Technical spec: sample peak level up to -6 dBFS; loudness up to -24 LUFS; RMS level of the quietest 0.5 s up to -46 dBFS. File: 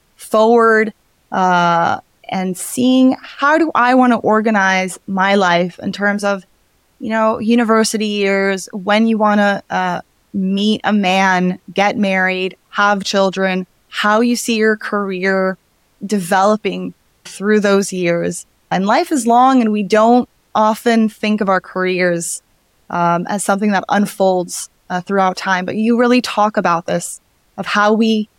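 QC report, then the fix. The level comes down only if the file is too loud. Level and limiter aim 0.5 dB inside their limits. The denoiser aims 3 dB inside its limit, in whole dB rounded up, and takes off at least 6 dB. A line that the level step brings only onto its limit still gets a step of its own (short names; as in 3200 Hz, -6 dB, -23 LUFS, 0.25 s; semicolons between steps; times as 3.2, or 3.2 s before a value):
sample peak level -2.5 dBFS: fail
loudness -15.0 LUFS: fail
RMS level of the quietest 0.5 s -57 dBFS: OK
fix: gain -9.5 dB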